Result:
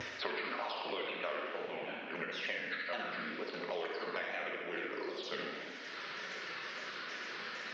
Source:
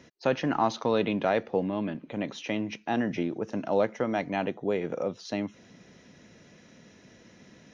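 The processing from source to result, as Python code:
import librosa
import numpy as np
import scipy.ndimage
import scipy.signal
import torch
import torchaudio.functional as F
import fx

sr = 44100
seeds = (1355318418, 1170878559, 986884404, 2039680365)

y = fx.pitch_ramps(x, sr, semitones=-7.0, every_ms=154)
y = scipy.signal.sosfilt(scipy.signal.butter(2, 270.0, 'highpass', fs=sr, output='sos'), y)
y = np.diff(y, prepend=0.0)
y = fx.notch(y, sr, hz=790.0, q=12.0)
y = fx.room_flutter(y, sr, wall_m=11.3, rt60_s=0.88)
y = fx.wow_flutter(y, sr, seeds[0], rate_hz=2.1, depth_cents=140.0)
y = scipy.signal.sosfilt(scipy.signal.butter(2, 2800.0, 'lowpass', fs=sr, output='sos'), y)
y = fx.rev_gated(y, sr, seeds[1], gate_ms=290, shape='falling', drr_db=1.0)
y = fx.band_squash(y, sr, depth_pct=100)
y = y * librosa.db_to_amplitude(8.5)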